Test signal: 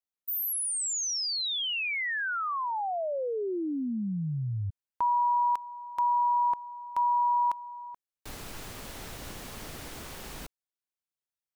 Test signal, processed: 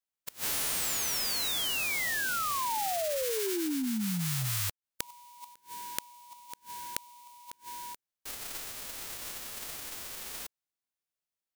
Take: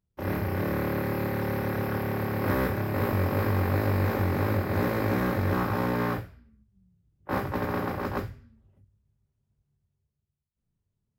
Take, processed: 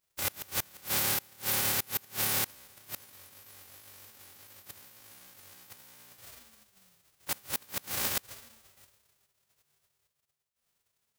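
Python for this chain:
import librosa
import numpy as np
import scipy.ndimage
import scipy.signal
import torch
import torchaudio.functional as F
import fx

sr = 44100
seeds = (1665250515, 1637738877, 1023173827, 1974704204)

y = fx.envelope_flatten(x, sr, power=0.1)
y = fx.gate_flip(y, sr, shuts_db=-17.0, range_db=-28)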